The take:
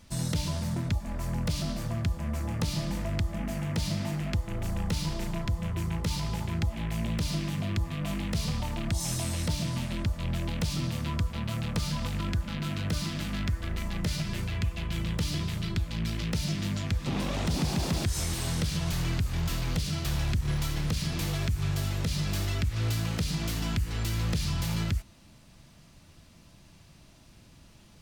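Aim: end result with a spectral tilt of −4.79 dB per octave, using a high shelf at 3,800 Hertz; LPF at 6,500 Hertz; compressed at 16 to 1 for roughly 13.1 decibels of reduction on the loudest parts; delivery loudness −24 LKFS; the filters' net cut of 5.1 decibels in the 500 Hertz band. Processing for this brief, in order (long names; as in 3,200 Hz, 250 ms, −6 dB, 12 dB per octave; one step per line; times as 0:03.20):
low-pass filter 6,500 Hz
parametric band 500 Hz −7.5 dB
high-shelf EQ 3,800 Hz +4 dB
downward compressor 16 to 1, threshold −37 dBFS
level +18 dB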